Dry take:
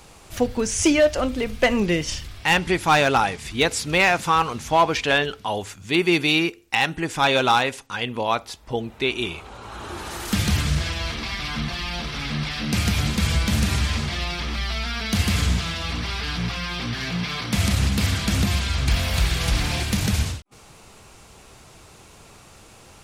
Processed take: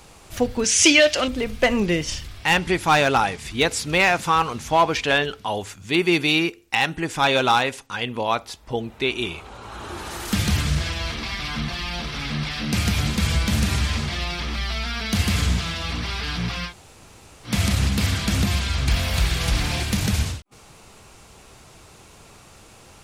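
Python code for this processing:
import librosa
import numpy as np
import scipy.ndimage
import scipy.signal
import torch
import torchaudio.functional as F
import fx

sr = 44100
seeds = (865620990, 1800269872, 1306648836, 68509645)

y = fx.weighting(x, sr, curve='D', at=(0.64, 1.28))
y = fx.edit(y, sr, fx.room_tone_fill(start_s=16.69, length_s=0.79, crossfade_s=0.1), tone=tone)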